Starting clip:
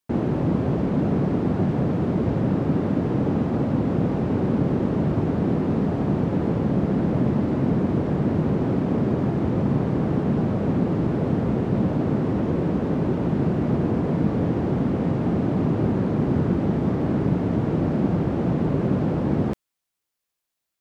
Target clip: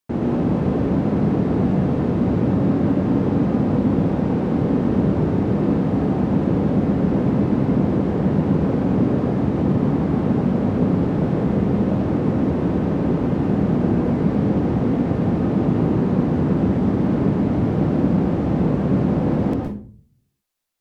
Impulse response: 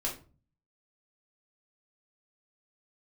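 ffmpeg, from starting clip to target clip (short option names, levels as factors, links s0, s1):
-filter_complex "[0:a]asplit=2[s0][s1];[1:a]atrim=start_sample=2205,asetrate=34839,aresample=44100,adelay=113[s2];[s1][s2]afir=irnorm=-1:irlink=0,volume=0.473[s3];[s0][s3]amix=inputs=2:normalize=0"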